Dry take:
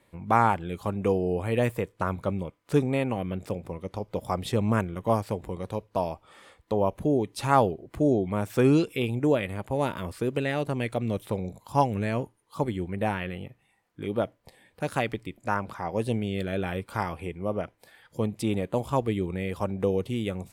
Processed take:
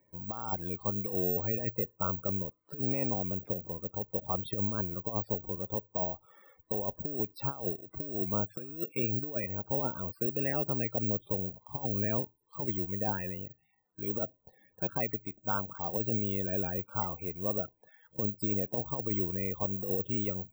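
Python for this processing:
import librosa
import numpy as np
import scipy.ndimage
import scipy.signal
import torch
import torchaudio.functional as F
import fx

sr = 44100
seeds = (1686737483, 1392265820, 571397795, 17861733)

y = fx.spec_topn(x, sr, count=32)
y = fx.high_shelf(y, sr, hz=6100.0, db=-11.0)
y = fx.over_compress(y, sr, threshold_db=-26.0, ratio=-0.5)
y = (np.kron(scipy.signal.resample_poly(y, 1, 2), np.eye(2)[0]) * 2)[:len(y)]
y = y * librosa.db_to_amplitude(-7.5)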